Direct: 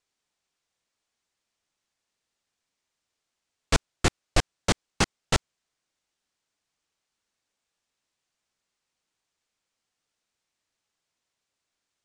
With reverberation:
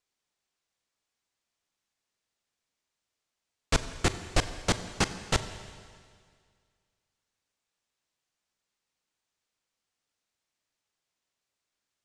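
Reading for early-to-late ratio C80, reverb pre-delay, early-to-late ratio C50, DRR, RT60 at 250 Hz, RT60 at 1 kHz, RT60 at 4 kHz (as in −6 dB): 12.5 dB, 38 ms, 12.0 dB, 10.5 dB, 2.0 s, 2.0 s, 2.0 s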